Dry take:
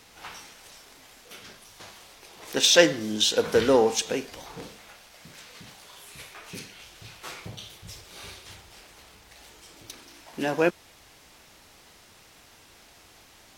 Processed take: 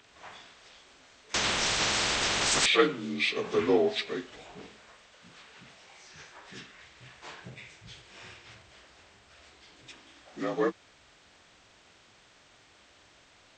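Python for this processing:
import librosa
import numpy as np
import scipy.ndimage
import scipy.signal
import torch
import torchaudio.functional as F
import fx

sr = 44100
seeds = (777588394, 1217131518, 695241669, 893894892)

y = fx.partial_stretch(x, sr, pct=84)
y = fx.spectral_comp(y, sr, ratio=10.0, at=(1.34, 2.66))
y = y * librosa.db_to_amplitude(-3.5)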